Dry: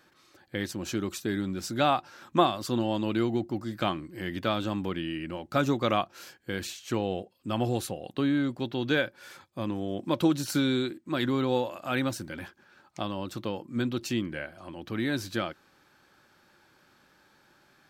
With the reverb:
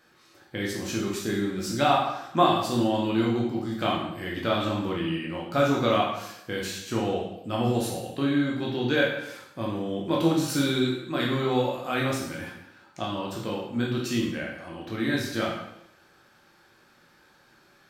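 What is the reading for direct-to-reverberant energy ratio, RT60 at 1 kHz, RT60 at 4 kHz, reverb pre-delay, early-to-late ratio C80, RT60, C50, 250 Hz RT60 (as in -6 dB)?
-3.5 dB, 0.75 s, 0.75 s, 6 ms, 6.0 dB, 0.80 s, 3.0 dB, 0.85 s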